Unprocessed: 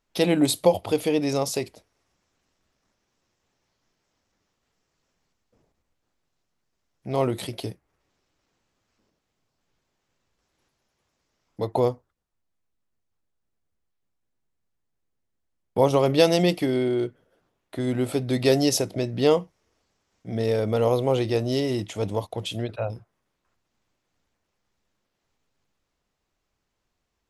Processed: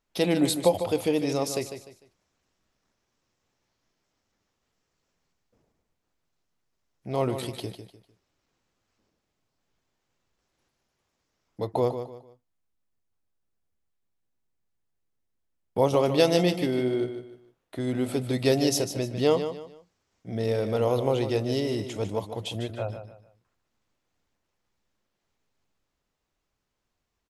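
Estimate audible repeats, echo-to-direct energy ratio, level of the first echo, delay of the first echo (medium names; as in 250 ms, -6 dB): 3, -9.0 dB, -9.5 dB, 150 ms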